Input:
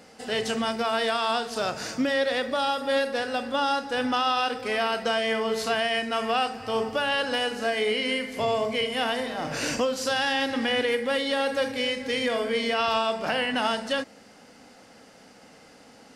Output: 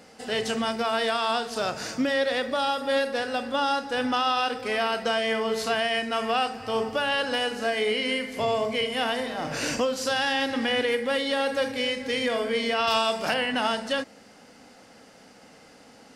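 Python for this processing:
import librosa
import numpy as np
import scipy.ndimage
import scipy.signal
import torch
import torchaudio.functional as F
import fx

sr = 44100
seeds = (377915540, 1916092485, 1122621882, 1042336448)

y = fx.high_shelf(x, sr, hz=3900.0, db=10.5, at=(12.87, 13.34))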